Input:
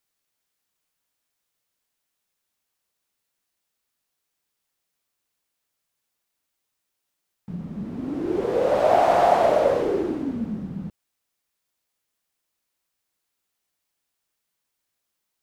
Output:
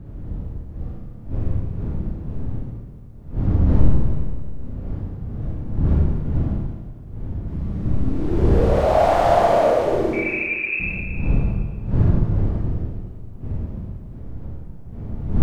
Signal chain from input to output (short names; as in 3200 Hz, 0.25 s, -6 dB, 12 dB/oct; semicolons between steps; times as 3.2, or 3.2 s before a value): wind noise 110 Hz -23 dBFS; 10.13–10.8 inverted band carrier 2600 Hz; Schroeder reverb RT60 1.6 s, combs from 27 ms, DRR -5 dB; gain -4.5 dB